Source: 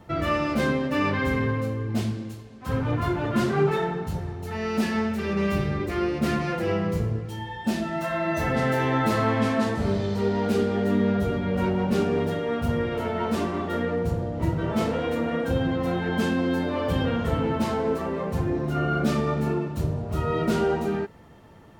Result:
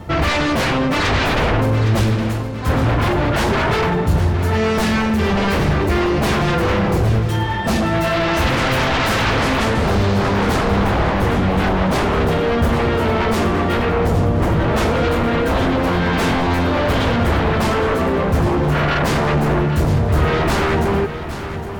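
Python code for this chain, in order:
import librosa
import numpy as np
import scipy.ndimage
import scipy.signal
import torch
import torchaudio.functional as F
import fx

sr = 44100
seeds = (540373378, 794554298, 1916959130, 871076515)

y = fx.low_shelf(x, sr, hz=370.0, db=5.0, at=(1.08, 1.6))
y = fx.fold_sine(y, sr, drive_db=14, ceiling_db=-10.5)
y = fx.peak_eq(y, sr, hz=62.0, db=9.0, octaves=1.3)
y = fx.echo_feedback(y, sr, ms=812, feedback_pct=47, wet_db=-11)
y = y * 10.0 ** (-4.5 / 20.0)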